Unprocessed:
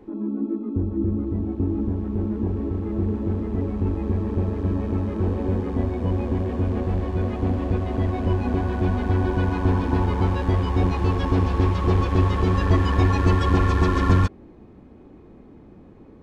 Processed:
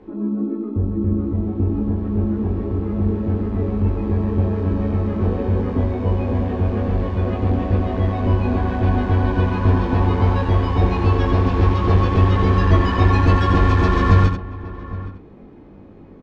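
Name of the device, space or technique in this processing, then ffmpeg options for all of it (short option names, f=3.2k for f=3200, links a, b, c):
slapback doubling: -filter_complex "[0:a]lowpass=5k,bandreject=f=60:t=h:w=6,bandreject=f=120:t=h:w=6,bandreject=f=180:t=h:w=6,bandreject=f=240:t=h:w=6,bandreject=f=300:t=h:w=6,bandreject=f=360:t=h:w=6,asplit=3[a][b][c];[b]adelay=20,volume=-4dB[d];[c]adelay=92,volume=-6.5dB[e];[a][d][e]amix=inputs=3:normalize=0,asplit=2[f][g];[g]adelay=816.3,volume=-16dB,highshelf=f=4k:g=-18.4[h];[f][h]amix=inputs=2:normalize=0,volume=2.5dB"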